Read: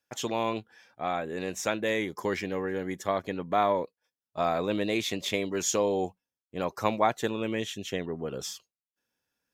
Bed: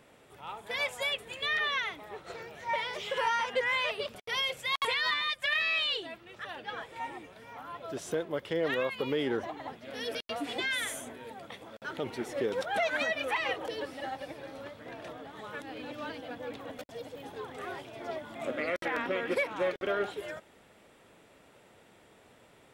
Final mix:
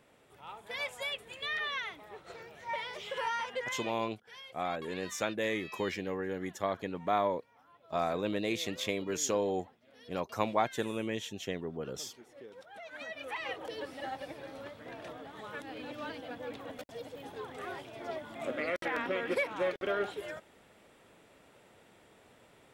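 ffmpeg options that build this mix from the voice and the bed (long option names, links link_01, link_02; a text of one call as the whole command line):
ffmpeg -i stem1.wav -i stem2.wav -filter_complex "[0:a]adelay=3550,volume=-4.5dB[link_01];[1:a]volume=12.5dB,afade=type=out:start_time=3.43:duration=0.62:silence=0.199526,afade=type=in:start_time=12.83:duration=1.28:silence=0.133352[link_02];[link_01][link_02]amix=inputs=2:normalize=0" out.wav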